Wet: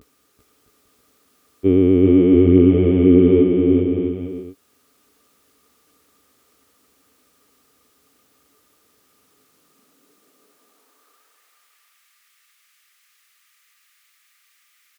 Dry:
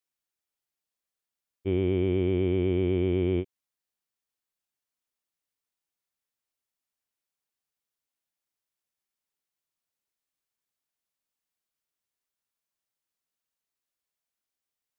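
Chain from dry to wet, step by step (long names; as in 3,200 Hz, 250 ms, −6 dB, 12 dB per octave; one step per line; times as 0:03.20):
upward compression, threshold −46 dBFS
pitch vibrato 0.3 Hz 47 cents
hollow resonant body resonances 280/420/1,200 Hz, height 16 dB, ringing for 45 ms
high-pass filter sweep 64 Hz → 2,000 Hz, 0:09.04–0:11.48
on a send: bouncing-ball delay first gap 390 ms, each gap 0.7×, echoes 5
on the sum: level +1.5 dB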